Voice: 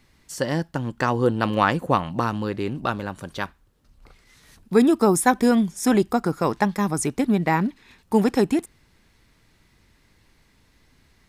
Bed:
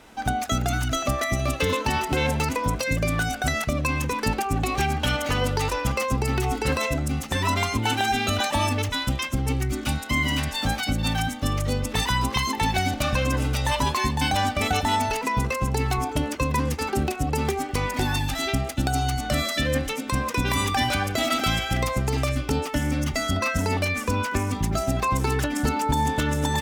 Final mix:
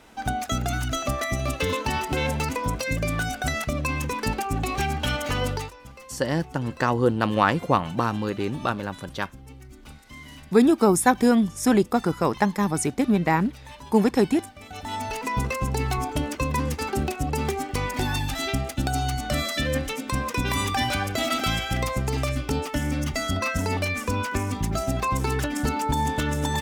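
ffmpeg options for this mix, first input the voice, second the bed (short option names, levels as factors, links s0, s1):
-filter_complex "[0:a]adelay=5800,volume=0.944[s0];[1:a]volume=6.68,afade=t=out:st=5.51:d=0.21:silence=0.125893,afade=t=in:st=14.68:d=0.71:silence=0.11885[s1];[s0][s1]amix=inputs=2:normalize=0"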